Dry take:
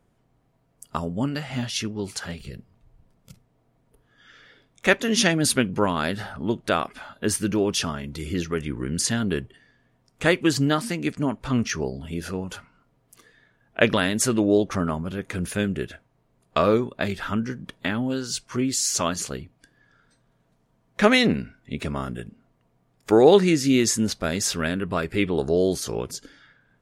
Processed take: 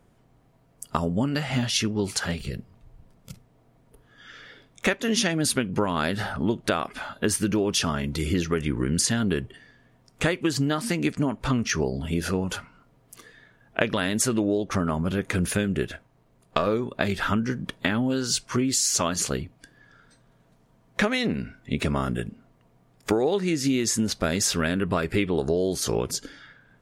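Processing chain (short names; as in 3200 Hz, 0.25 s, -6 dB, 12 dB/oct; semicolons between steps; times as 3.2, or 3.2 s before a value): 15.83–16.67 half-wave gain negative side -3 dB; compressor 16:1, threshold -25 dBFS, peak gain reduction 16.5 dB; gain +5.5 dB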